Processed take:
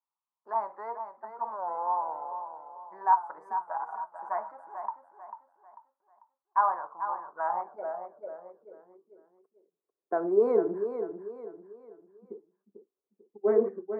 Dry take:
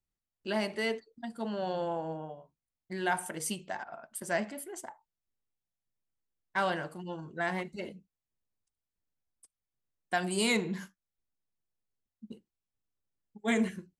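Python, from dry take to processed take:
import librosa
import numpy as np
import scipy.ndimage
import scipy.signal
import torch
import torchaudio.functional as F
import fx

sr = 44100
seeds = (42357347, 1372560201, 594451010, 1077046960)

p1 = fx.wow_flutter(x, sr, seeds[0], rate_hz=2.1, depth_cents=110.0)
p2 = scipy.signal.sosfilt(scipy.signal.ellip(3, 1.0, 40, [130.0, 1200.0], 'bandpass', fs=sr, output='sos'), p1)
p3 = p2 + fx.echo_feedback(p2, sr, ms=444, feedback_pct=37, wet_db=-9, dry=0)
p4 = fx.filter_sweep_highpass(p3, sr, from_hz=950.0, to_hz=400.0, start_s=7.34, end_s=8.99, q=5.1)
y = fx.comb(p4, sr, ms=6.2, depth=0.53, at=(3.6, 4.75))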